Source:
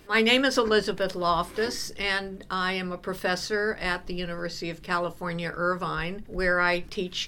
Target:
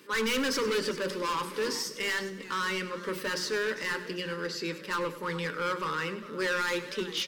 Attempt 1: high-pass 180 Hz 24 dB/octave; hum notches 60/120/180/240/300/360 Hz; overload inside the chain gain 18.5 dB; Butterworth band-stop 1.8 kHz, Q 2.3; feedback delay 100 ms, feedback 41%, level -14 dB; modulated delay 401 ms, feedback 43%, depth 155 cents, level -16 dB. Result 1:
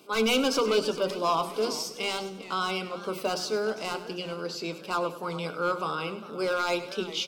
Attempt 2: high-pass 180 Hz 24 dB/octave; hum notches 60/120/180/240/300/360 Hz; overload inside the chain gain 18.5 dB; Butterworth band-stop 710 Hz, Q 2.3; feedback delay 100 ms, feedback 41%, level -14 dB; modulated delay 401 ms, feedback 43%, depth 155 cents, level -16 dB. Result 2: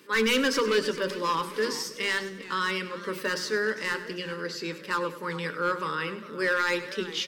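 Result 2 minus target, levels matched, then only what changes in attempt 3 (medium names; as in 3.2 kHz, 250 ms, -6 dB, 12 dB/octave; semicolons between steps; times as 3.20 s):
overload inside the chain: distortion -7 dB
change: overload inside the chain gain 26 dB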